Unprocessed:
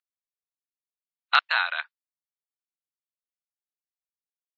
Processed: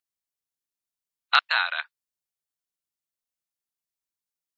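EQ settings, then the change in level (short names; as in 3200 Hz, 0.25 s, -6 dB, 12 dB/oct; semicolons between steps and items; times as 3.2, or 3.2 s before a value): tone controls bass +4 dB, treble +5 dB; 0.0 dB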